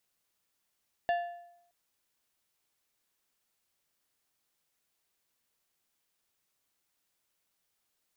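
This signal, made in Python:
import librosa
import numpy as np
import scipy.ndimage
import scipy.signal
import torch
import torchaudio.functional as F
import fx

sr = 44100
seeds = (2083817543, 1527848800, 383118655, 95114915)

y = fx.strike_metal(sr, length_s=0.62, level_db=-24, body='plate', hz=696.0, decay_s=0.79, tilt_db=9.0, modes=5)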